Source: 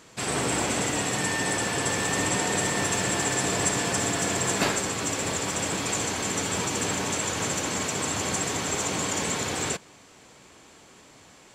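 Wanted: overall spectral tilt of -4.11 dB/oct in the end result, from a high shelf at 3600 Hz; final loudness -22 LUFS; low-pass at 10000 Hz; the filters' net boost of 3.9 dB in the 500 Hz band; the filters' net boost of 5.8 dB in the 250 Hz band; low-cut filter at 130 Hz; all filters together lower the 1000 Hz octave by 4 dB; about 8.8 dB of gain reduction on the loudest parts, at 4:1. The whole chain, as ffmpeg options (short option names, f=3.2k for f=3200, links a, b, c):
-af "highpass=130,lowpass=10k,equalizer=f=250:t=o:g=7,equalizer=f=500:t=o:g=4.5,equalizer=f=1k:t=o:g=-7,highshelf=f=3.6k:g=-7.5,acompressor=threshold=-29dB:ratio=4,volume=10dB"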